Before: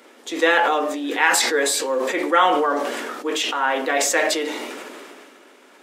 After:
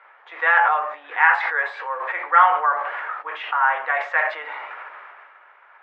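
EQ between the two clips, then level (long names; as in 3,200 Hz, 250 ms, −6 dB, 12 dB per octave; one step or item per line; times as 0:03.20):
high-pass filter 850 Hz 24 dB per octave
low-pass filter 1,900 Hz 24 dB per octave
+4.5 dB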